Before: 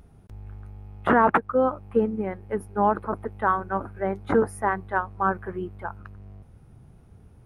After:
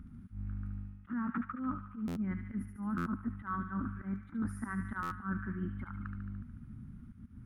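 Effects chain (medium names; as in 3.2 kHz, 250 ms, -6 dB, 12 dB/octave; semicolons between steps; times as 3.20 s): slow attack 105 ms; FFT filter 150 Hz 0 dB, 240 Hz +11 dB, 430 Hz -21 dB, 710 Hz -23 dB, 1.3 kHz -1 dB, 4.2 kHz -14 dB; reverse; compression 16:1, threshold -34 dBFS, peak gain reduction 21 dB; reverse; band-stop 2.6 kHz, Q 19; on a send: feedback echo behind a high-pass 73 ms, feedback 67%, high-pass 1.7 kHz, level -4 dB; on the sum: buffer glitch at 2.07/2.97/5.02 s, samples 512, times 7; trim +1 dB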